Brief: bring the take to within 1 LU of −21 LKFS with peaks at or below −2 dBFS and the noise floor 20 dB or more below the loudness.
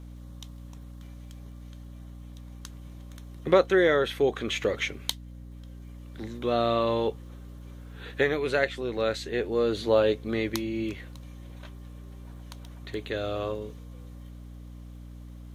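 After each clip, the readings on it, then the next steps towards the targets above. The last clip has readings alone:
crackle rate 43 per second; mains hum 60 Hz; hum harmonics up to 300 Hz; level of the hum −41 dBFS; integrated loudness −27.0 LKFS; sample peak −8.0 dBFS; target loudness −21.0 LKFS
→ click removal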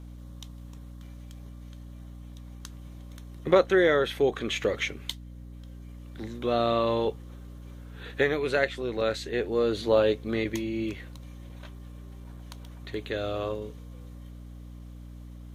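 crackle rate 0.32 per second; mains hum 60 Hz; hum harmonics up to 300 Hz; level of the hum −41 dBFS
→ hum removal 60 Hz, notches 5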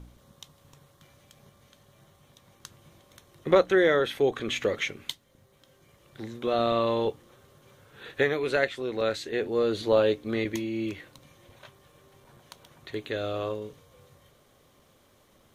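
mains hum none found; integrated loudness −27.0 LKFS; sample peak −8.5 dBFS; target loudness −21.0 LKFS
→ level +6 dB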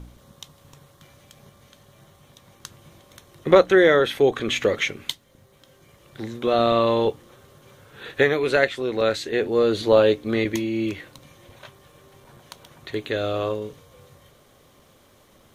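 integrated loudness −21.0 LKFS; sample peak −2.5 dBFS; background noise floor −56 dBFS

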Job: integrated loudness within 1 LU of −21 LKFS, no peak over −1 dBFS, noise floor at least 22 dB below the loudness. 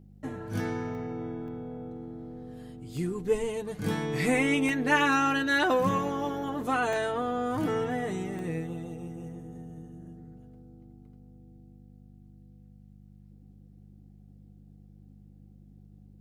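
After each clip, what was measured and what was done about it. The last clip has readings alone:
number of dropouts 6; longest dropout 1.1 ms; mains hum 50 Hz; hum harmonics up to 200 Hz; level of the hum −50 dBFS; integrated loudness −29.5 LKFS; sample peak −10.0 dBFS; target loudness −21.0 LKFS
→ repair the gap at 0:00.95/0:01.48/0:02.97/0:04.69/0:06.93/0:08.39, 1.1 ms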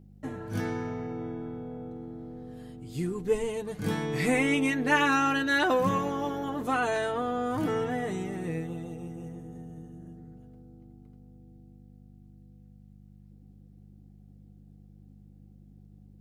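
number of dropouts 0; mains hum 50 Hz; hum harmonics up to 200 Hz; level of the hum −50 dBFS
→ hum removal 50 Hz, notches 4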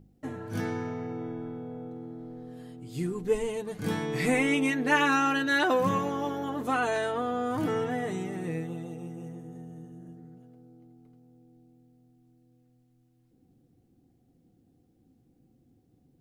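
mains hum none found; integrated loudness −29.5 LKFS; sample peak −10.0 dBFS; target loudness −21.0 LKFS
→ level +8.5 dB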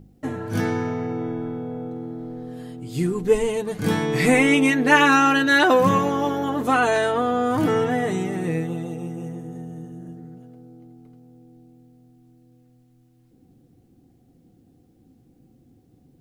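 integrated loudness −21.0 LKFS; sample peak −1.5 dBFS; background noise floor −58 dBFS

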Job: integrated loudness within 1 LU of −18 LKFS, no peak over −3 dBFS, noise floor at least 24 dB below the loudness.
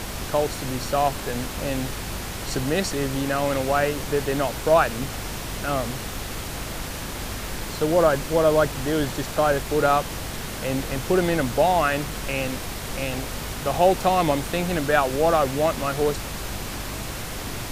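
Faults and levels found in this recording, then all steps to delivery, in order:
mains hum 50 Hz; hum harmonics up to 250 Hz; level of the hum −36 dBFS; background noise floor −33 dBFS; target noise floor −48 dBFS; integrated loudness −24.0 LKFS; sample peak −5.0 dBFS; target loudness −18.0 LKFS
→ hum removal 50 Hz, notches 5
noise reduction from a noise print 15 dB
level +6 dB
brickwall limiter −3 dBFS

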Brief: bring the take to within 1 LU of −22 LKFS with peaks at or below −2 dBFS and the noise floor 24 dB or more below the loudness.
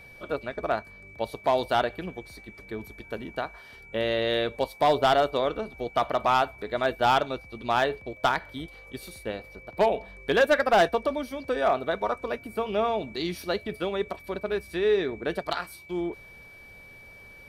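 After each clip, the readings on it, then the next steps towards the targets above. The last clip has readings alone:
share of clipped samples 0.4%; peaks flattened at −14.5 dBFS; interfering tone 2,300 Hz; level of the tone −47 dBFS; integrated loudness −27.0 LKFS; sample peak −14.5 dBFS; target loudness −22.0 LKFS
→ clipped peaks rebuilt −14.5 dBFS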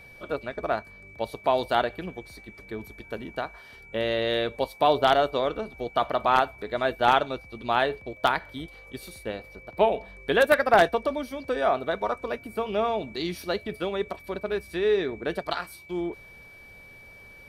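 share of clipped samples 0.0%; interfering tone 2,300 Hz; level of the tone −47 dBFS
→ notch filter 2,300 Hz, Q 30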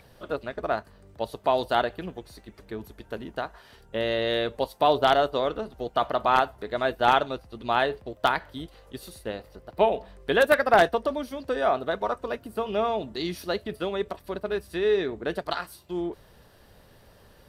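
interfering tone none found; integrated loudness −26.5 LKFS; sample peak −5.5 dBFS; target loudness −22.0 LKFS
→ level +4.5 dB
brickwall limiter −2 dBFS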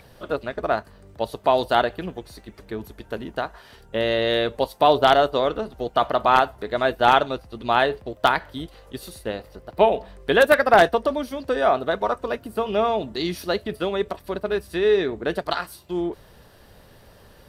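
integrated loudness −22.0 LKFS; sample peak −2.0 dBFS; background noise floor −51 dBFS

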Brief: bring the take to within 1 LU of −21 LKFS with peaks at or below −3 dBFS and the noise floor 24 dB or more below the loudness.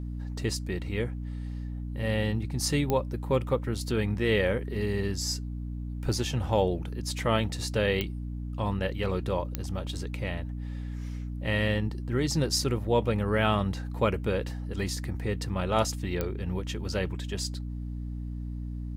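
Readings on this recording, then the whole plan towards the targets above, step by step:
number of clicks 4; mains hum 60 Hz; hum harmonics up to 300 Hz; level of the hum −32 dBFS; integrated loudness −30.0 LKFS; sample peak −9.5 dBFS; target loudness −21.0 LKFS
→ click removal
hum removal 60 Hz, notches 5
level +9 dB
brickwall limiter −3 dBFS

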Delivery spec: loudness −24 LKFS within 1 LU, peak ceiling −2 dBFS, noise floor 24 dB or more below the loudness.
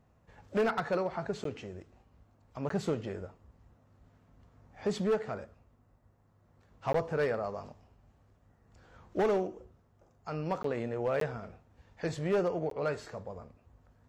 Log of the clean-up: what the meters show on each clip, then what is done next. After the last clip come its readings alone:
share of clipped samples 1.0%; peaks flattened at −23.5 dBFS; number of dropouts 6; longest dropout 13 ms; integrated loudness −34.0 LKFS; sample peak −23.5 dBFS; target loudness −24.0 LKFS
→ clipped peaks rebuilt −23.5 dBFS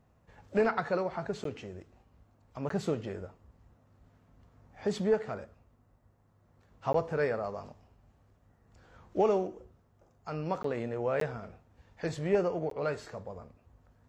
share of clipped samples 0.0%; number of dropouts 6; longest dropout 13 ms
→ repair the gap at 0:01.44/0:02.69/0:06.93/0:10.63/0:11.20/0:12.70, 13 ms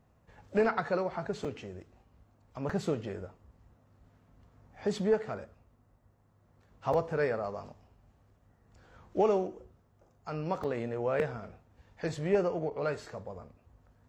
number of dropouts 0; integrated loudness −33.0 LKFS; sample peak −14.5 dBFS; target loudness −24.0 LKFS
→ level +9 dB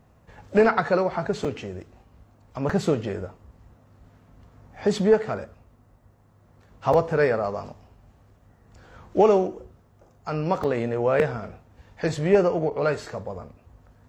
integrated loudness −24.0 LKFS; sample peak −5.5 dBFS; background noise floor −58 dBFS

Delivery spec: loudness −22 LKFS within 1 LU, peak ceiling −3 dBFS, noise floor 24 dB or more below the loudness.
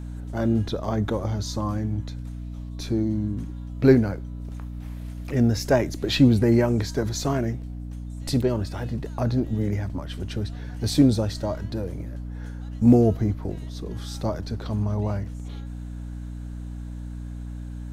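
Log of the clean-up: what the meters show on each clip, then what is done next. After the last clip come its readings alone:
mains hum 60 Hz; hum harmonics up to 300 Hz; level of the hum −32 dBFS; integrated loudness −24.5 LKFS; sample peak −4.0 dBFS; target loudness −22.0 LKFS
→ hum removal 60 Hz, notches 5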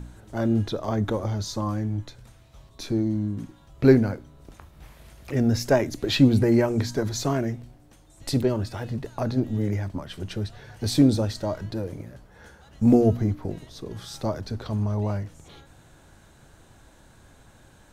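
mains hum none found; integrated loudness −25.0 LKFS; sample peak −4.5 dBFS; target loudness −22.0 LKFS
→ level +3 dB
brickwall limiter −3 dBFS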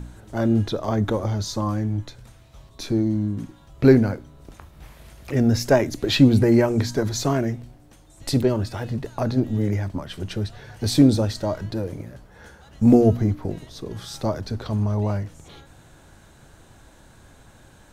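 integrated loudness −22.0 LKFS; sample peak −3.0 dBFS; background noise floor −51 dBFS

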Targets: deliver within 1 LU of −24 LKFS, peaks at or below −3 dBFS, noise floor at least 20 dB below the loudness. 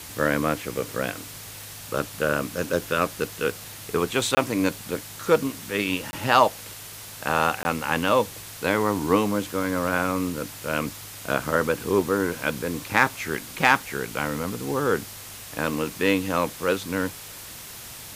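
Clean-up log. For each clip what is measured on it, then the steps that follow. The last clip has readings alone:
number of dropouts 3; longest dropout 20 ms; background noise floor −40 dBFS; target noise floor −45 dBFS; integrated loudness −25.0 LKFS; sample peak −3.0 dBFS; target loudness −24.0 LKFS
→ repair the gap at 0:04.35/0:06.11/0:07.63, 20 ms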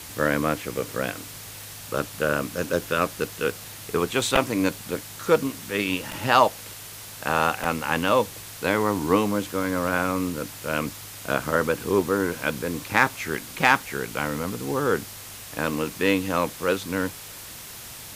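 number of dropouts 0; background noise floor −40 dBFS; target noise floor −45 dBFS
→ noise reduction from a noise print 6 dB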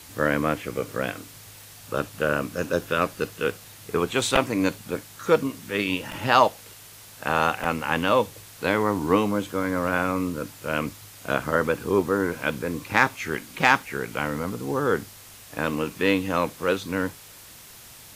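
background noise floor −46 dBFS; integrated loudness −25.0 LKFS; sample peak −3.0 dBFS; target loudness −24.0 LKFS
→ level +1 dB
brickwall limiter −3 dBFS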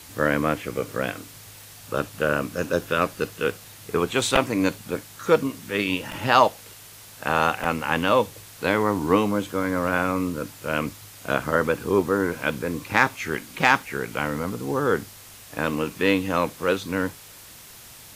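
integrated loudness −24.0 LKFS; sample peak −3.0 dBFS; background noise floor −45 dBFS

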